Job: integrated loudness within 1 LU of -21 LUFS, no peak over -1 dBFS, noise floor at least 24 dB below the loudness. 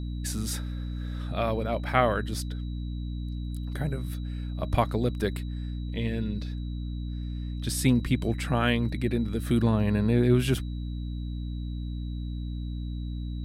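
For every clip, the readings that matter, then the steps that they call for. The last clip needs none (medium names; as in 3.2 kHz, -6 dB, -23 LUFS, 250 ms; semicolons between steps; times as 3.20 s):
hum 60 Hz; highest harmonic 300 Hz; hum level -31 dBFS; steady tone 3.9 kHz; tone level -54 dBFS; loudness -29.5 LUFS; peak level -6.5 dBFS; loudness target -21.0 LUFS
-> hum notches 60/120/180/240/300 Hz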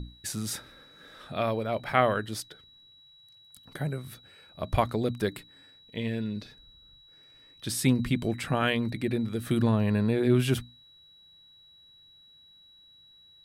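hum not found; steady tone 3.9 kHz; tone level -54 dBFS
-> band-stop 3.9 kHz, Q 30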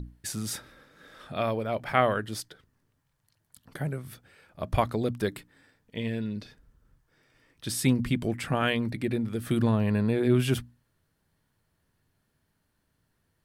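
steady tone not found; loudness -29.0 LUFS; peak level -6.5 dBFS; loudness target -21.0 LUFS
-> trim +8 dB; peak limiter -1 dBFS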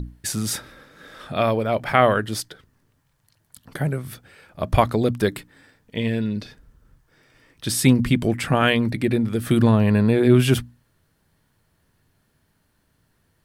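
loudness -21.0 LUFS; peak level -1.0 dBFS; noise floor -67 dBFS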